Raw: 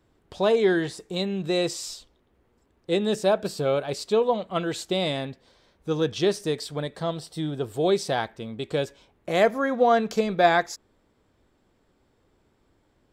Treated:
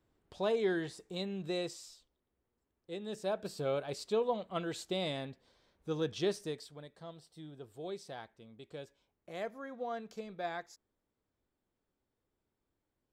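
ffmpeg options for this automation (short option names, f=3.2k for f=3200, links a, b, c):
-af "volume=-2.5dB,afade=t=out:st=1.5:d=0.41:silence=0.421697,afade=t=in:st=3:d=0.67:silence=0.375837,afade=t=out:st=6.32:d=0.45:silence=0.316228"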